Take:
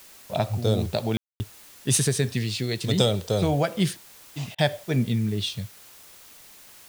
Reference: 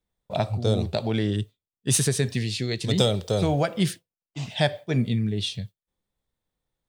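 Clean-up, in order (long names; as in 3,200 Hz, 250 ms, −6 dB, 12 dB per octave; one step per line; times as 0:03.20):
ambience match 0:01.17–0:01.40
repair the gap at 0:04.55, 32 ms
noise reduction from a noise print 30 dB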